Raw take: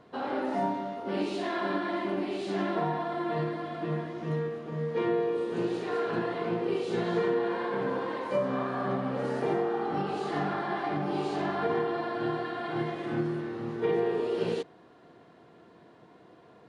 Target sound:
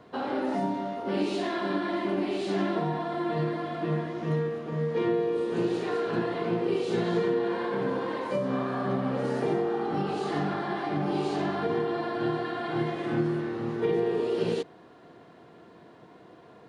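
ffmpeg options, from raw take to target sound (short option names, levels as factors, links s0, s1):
-filter_complex "[0:a]acrossover=split=430|3000[s0][s1][s2];[s1]acompressor=threshold=0.0178:ratio=6[s3];[s0][s3][s2]amix=inputs=3:normalize=0,volume=1.5"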